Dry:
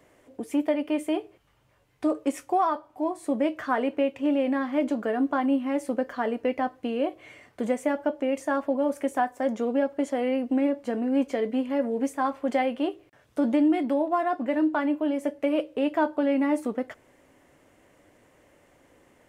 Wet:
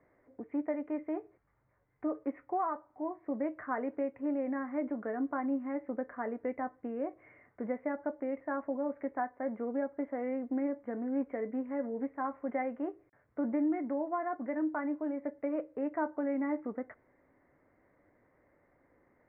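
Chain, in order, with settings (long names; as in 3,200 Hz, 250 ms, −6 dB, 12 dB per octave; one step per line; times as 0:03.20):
Chebyshev low-pass filter 2,100 Hz, order 5
level −8.5 dB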